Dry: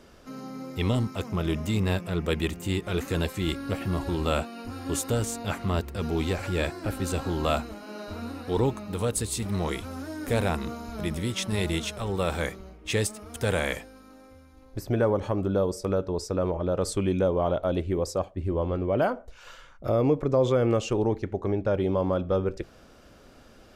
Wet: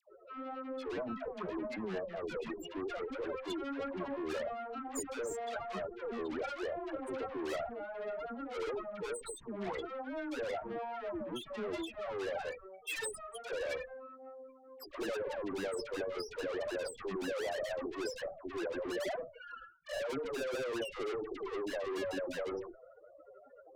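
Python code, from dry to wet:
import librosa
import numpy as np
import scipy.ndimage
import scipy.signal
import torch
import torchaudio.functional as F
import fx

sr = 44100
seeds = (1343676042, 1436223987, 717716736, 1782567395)

y = scipy.signal.sosfilt(scipy.signal.butter(2, 460.0, 'highpass', fs=sr, output='sos'), x)
y = fx.transient(y, sr, attack_db=-6, sustain_db=8, at=(3.61, 4.28), fade=0.02)
y = fx.tilt_shelf(y, sr, db=-6.5, hz=970.0, at=(12.5, 13.26))
y = fx.spec_topn(y, sr, count=4)
y = fx.tube_stage(y, sr, drive_db=45.0, bias=0.35)
y = fx.dispersion(y, sr, late='lows', ms=101.0, hz=940.0)
y = fx.end_taper(y, sr, db_per_s=160.0)
y = y * librosa.db_to_amplitude(9.0)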